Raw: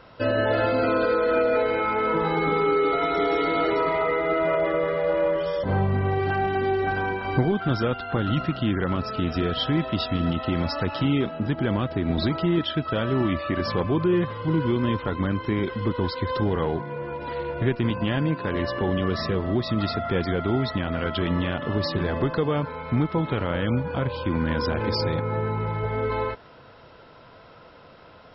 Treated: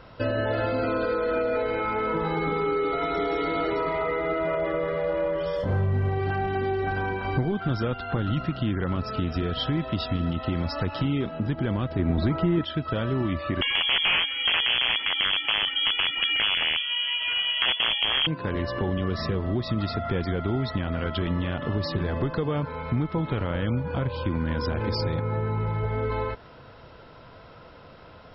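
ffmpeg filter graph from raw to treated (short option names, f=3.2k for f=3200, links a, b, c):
-filter_complex "[0:a]asettb=1/sr,asplit=3[a][b][c];[a]atrim=end=5.564[d];[b]atrim=start=5.56:end=6.09,asetpts=PTS-STARTPTS,afade=t=in:d=0.004:c=qsin,afade=t=out:st=0.526:d=0.004:c=qsin,adynamicsmooth=sensitivity=8:basefreq=3.9k,asplit=2[e][f];[f]adelay=29,volume=-6dB[g];[e][g]amix=inputs=2:normalize=0,atrim=end_sample=23373[h];[c]atrim=start=6.086[i];[d][h]acrossfade=d=0.004:c1=hsin:c2=qsin[j];[j][i]acrossfade=d=0.004:c1=qsin:c2=hsin,asettb=1/sr,asplit=3[k][l][m];[k]atrim=end=11.994[n];[l]atrim=start=11.99:end=12.65,asetpts=PTS-STARTPTS,afade=t=in:d=0.004:c=qsin,afade=t=out:st=0.656:d=0.004:c=qsin,lowpass=2.5k,acontrast=49[o];[m]atrim=start=12.646[p];[n][o]acrossfade=d=0.004:c1=hsin:c2=qsin[q];[q][p]acrossfade=d=0.004:c1=qsin:c2=hsin,asettb=1/sr,asplit=3[r][s][t];[r]atrim=end=13.614[u];[s]atrim=start=13.61:end=18.27,asetpts=PTS-STARTPTS,afade=t=in:d=0.004:c=qsin,afade=t=out:st=4.656:d=0.004:c=qsin,acontrast=90,aeval=exprs='(mod(3.16*val(0)+1,2)-1)/3.16':c=same,lowpass=f=2.9k:t=q:w=0.5098,lowpass=f=2.9k:t=q:w=0.6013,lowpass=f=2.9k:t=q:w=0.9,lowpass=f=2.9k:t=q:w=2.563,afreqshift=-3400[v];[t]atrim=start=18.266[w];[u][v]acrossfade=d=0.004:c1=hsin:c2=qsin[x];[x][w]acrossfade=d=0.004:c1=qsin:c2=hsin,lowshelf=f=120:g=8,acompressor=threshold=-26dB:ratio=2"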